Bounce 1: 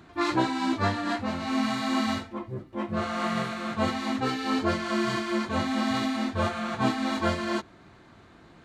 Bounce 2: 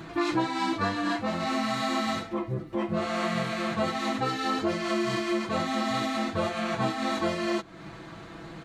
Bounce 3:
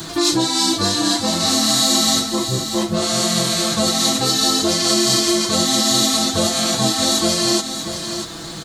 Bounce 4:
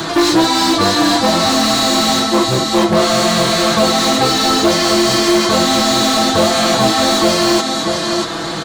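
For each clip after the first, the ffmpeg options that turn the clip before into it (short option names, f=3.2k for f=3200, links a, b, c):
-af "aecho=1:1:6.1:0.67,acompressor=threshold=-37dB:ratio=3,volume=8.5dB"
-filter_complex "[0:a]acrossover=split=260|680|3900[a][b][c][d];[c]alimiter=level_in=6dB:limit=-24dB:level=0:latency=1:release=169,volume=-6dB[e];[a][b][e][d]amix=inputs=4:normalize=0,aexciter=amount=7.2:drive=5.3:freq=3.5k,aecho=1:1:638:0.355,volume=8.5dB"
-filter_complex "[0:a]asplit=2[a][b];[b]aeval=exprs='(mod(5.01*val(0)+1,2)-1)/5.01':c=same,volume=-8dB[c];[a][c]amix=inputs=2:normalize=0,asplit=2[d][e];[e]highpass=f=720:p=1,volume=16dB,asoftclip=type=tanh:threshold=-3dB[f];[d][f]amix=inputs=2:normalize=0,lowpass=f=1.2k:p=1,volume=-6dB,volume=4.5dB"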